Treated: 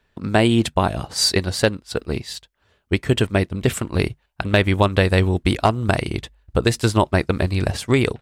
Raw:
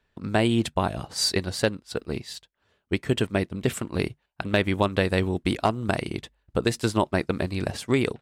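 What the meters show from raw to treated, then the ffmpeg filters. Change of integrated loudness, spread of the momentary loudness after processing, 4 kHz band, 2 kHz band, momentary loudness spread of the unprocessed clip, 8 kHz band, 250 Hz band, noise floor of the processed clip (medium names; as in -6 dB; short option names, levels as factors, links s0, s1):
+6.0 dB, 10 LU, +6.0 dB, +6.0 dB, 10 LU, +6.0 dB, +5.0 dB, -66 dBFS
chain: -af "asubboost=boost=2.5:cutoff=110,volume=2"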